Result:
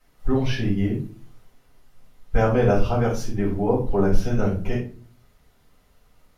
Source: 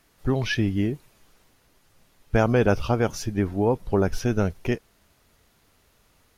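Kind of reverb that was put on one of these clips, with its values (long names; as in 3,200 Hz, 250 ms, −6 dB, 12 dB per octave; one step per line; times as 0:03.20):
rectangular room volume 270 cubic metres, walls furnished, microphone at 6.9 metres
level −12.5 dB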